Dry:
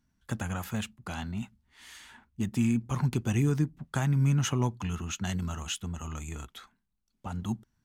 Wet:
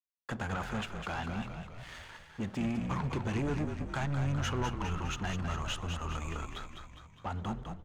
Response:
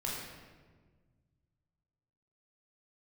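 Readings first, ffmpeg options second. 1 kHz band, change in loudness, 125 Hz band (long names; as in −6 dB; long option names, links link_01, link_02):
+2.5 dB, −5.0 dB, −6.0 dB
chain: -filter_complex "[0:a]lowpass=8800,bandreject=frequency=60:width_type=h:width=6,bandreject=frequency=120:width_type=h:width=6,bandreject=frequency=180:width_type=h:width=6,bandreject=frequency=240:width_type=h:width=6,asubboost=boost=2.5:cutoff=80,asplit=2[link_01][link_02];[link_02]acompressor=threshold=-41dB:ratio=6,volume=-1dB[link_03];[link_01][link_03]amix=inputs=2:normalize=0,aeval=exprs='sgn(val(0))*max(abs(val(0))-0.00376,0)':channel_layout=same,asplit=2[link_04][link_05];[link_05]highpass=frequency=720:poles=1,volume=10dB,asoftclip=type=tanh:threshold=-16.5dB[link_06];[link_04][link_06]amix=inputs=2:normalize=0,lowpass=frequency=1200:poles=1,volume=-6dB,asoftclip=type=tanh:threshold=-30.5dB,asplit=8[link_07][link_08][link_09][link_10][link_11][link_12][link_13][link_14];[link_08]adelay=204,afreqshift=-47,volume=-6.5dB[link_15];[link_09]adelay=408,afreqshift=-94,volume=-11.7dB[link_16];[link_10]adelay=612,afreqshift=-141,volume=-16.9dB[link_17];[link_11]adelay=816,afreqshift=-188,volume=-22.1dB[link_18];[link_12]adelay=1020,afreqshift=-235,volume=-27.3dB[link_19];[link_13]adelay=1224,afreqshift=-282,volume=-32.5dB[link_20];[link_14]adelay=1428,afreqshift=-329,volume=-37.7dB[link_21];[link_07][link_15][link_16][link_17][link_18][link_19][link_20][link_21]amix=inputs=8:normalize=0,asplit=2[link_22][link_23];[1:a]atrim=start_sample=2205[link_24];[link_23][link_24]afir=irnorm=-1:irlink=0,volume=-22dB[link_25];[link_22][link_25]amix=inputs=2:normalize=0,volume=1.5dB"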